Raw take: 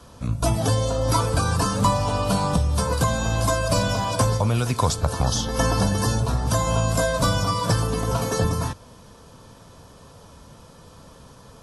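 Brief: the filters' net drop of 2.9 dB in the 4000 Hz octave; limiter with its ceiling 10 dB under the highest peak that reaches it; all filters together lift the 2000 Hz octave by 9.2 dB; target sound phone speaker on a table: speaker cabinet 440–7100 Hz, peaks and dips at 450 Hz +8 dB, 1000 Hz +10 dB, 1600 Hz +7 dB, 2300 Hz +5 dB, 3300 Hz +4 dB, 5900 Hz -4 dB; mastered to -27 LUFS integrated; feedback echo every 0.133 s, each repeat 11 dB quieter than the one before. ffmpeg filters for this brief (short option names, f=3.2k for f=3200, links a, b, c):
-af "equalizer=f=2k:t=o:g=4.5,equalizer=f=4k:t=o:g=-7.5,alimiter=limit=-16dB:level=0:latency=1,highpass=f=440:w=0.5412,highpass=f=440:w=1.3066,equalizer=f=450:t=q:w=4:g=8,equalizer=f=1k:t=q:w=4:g=10,equalizer=f=1.6k:t=q:w=4:g=7,equalizer=f=2.3k:t=q:w=4:g=5,equalizer=f=3.3k:t=q:w=4:g=4,equalizer=f=5.9k:t=q:w=4:g=-4,lowpass=f=7.1k:w=0.5412,lowpass=f=7.1k:w=1.3066,aecho=1:1:133|266|399:0.282|0.0789|0.0221,volume=-4.5dB"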